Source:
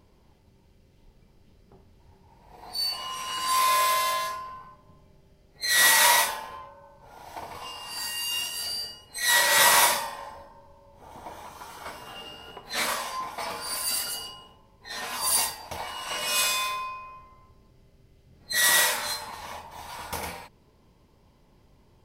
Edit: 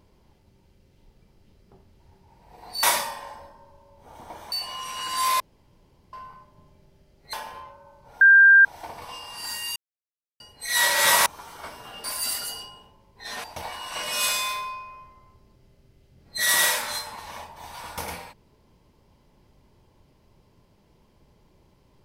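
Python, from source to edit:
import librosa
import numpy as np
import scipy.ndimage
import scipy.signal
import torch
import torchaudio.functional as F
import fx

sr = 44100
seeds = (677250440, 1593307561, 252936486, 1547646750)

y = fx.edit(x, sr, fx.room_tone_fill(start_s=3.71, length_s=0.73),
    fx.cut(start_s=5.64, length_s=0.66),
    fx.insert_tone(at_s=7.18, length_s=0.44, hz=1590.0, db=-9.5),
    fx.silence(start_s=8.29, length_s=0.64),
    fx.move(start_s=9.79, length_s=1.69, to_s=2.83),
    fx.cut(start_s=12.26, length_s=1.43),
    fx.cut(start_s=15.09, length_s=0.5), tone=tone)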